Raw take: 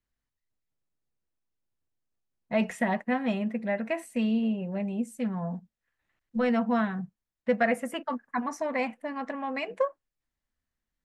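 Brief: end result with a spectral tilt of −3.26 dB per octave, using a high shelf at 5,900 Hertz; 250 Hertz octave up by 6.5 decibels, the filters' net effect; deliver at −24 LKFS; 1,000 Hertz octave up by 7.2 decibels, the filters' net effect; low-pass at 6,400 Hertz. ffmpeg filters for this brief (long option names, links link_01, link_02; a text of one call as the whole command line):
ffmpeg -i in.wav -af "lowpass=6400,equalizer=frequency=250:width_type=o:gain=7,equalizer=frequency=1000:width_type=o:gain=9,highshelf=frequency=5900:gain=5,volume=0.5dB" out.wav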